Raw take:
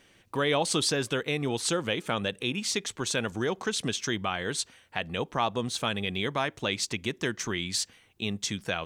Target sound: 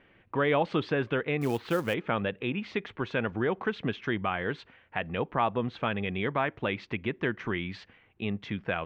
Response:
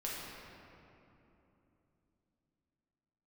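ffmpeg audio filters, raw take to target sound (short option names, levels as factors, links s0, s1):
-filter_complex "[0:a]lowpass=f=2500:w=0.5412,lowpass=f=2500:w=1.3066,asettb=1/sr,asplit=3[s0][s1][s2];[s0]atrim=end=1.414[s3];[s1]atrim=start=1.41:end=1.94,asetpts=PTS-STARTPTS,afade=t=in:d=0.004:c=qsin,afade=t=out:st=0.526:d=0.004:c=qsin,acrusher=bits=5:mode=log:mix=0:aa=0.000001[s4];[s2]atrim=start=1.936[s5];[s3][s4]acrossfade=d=0.004:c1=hsin:c2=qsin[s6];[s6][s5]acrossfade=d=0.004:c1=qsin:c2=hsin,volume=1.12"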